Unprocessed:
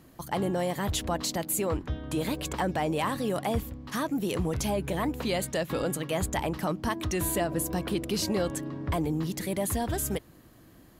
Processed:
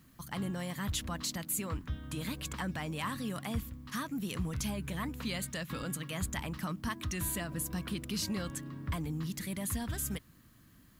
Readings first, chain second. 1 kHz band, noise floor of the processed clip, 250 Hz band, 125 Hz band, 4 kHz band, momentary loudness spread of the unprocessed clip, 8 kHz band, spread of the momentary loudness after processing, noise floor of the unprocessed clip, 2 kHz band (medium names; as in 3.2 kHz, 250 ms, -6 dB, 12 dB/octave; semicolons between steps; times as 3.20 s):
-10.0 dB, -61 dBFS, -6.5 dB, -4.5 dB, -4.5 dB, 4 LU, -4.5 dB, 4 LU, -55 dBFS, -4.5 dB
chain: high-order bell 530 Hz -10.5 dB; added noise blue -70 dBFS; trim -4.5 dB